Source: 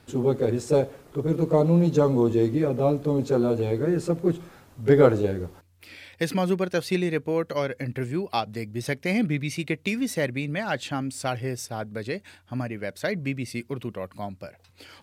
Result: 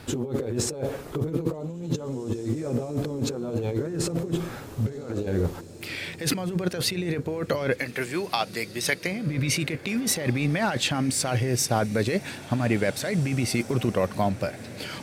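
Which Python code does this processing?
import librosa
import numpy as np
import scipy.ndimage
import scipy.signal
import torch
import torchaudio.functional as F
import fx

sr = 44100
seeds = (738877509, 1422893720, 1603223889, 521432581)

p1 = fx.highpass(x, sr, hz=1300.0, slope=6, at=(7.77, 9.06), fade=0.02)
p2 = fx.over_compress(p1, sr, threshold_db=-32.0, ratio=-1.0)
p3 = p2 + fx.echo_diffused(p2, sr, ms=1970, feedback_pct=47, wet_db=-16.0, dry=0)
y = p3 * librosa.db_to_amplitude(4.5)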